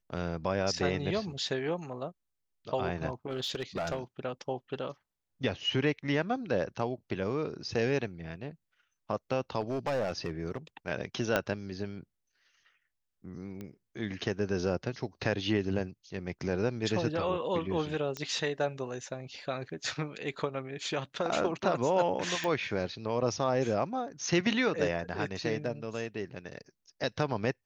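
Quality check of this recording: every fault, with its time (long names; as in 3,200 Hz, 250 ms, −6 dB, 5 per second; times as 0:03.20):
0:03.30–0:03.99: clipping −28 dBFS
0:09.60–0:10.58: clipping −27 dBFS
0:11.36: click −12 dBFS
0:13.61: click −28 dBFS
0:18.17: click −21 dBFS
0:22.44: click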